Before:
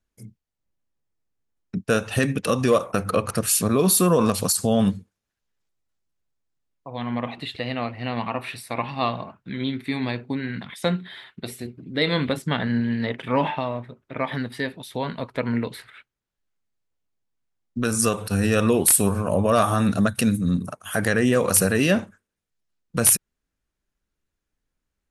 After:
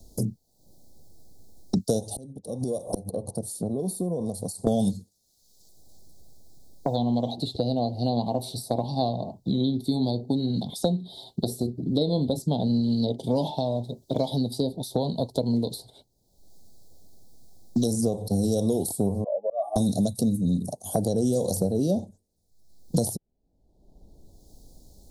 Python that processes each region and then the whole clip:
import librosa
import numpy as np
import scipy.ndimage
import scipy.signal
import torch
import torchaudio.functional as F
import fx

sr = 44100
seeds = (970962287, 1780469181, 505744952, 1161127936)

y = fx.chain(x, sr, fx.peak_eq(hz=9400.0, db=13.5, octaves=0.4),
    fx.gate_flip(shuts_db=-15.0, range_db=-25),
    fx.transformer_sat(knee_hz=1400.0), at=(2.0, 4.67))
y = fx.chain(y, sr, fx.spec_expand(power=2.3),
    fx.highpass(hz=670.0, slope=24),
    fx.auto_swell(attack_ms=249.0), at=(19.24, 19.76))
y = scipy.signal.sosfilt(scipy.signal.ellip(3, 1.0, 40, [760.0, 4200.0], 'bandstop', fs=sr, output='sos'), y)
y = fx.band_squash(y, sr, depth_pct=100)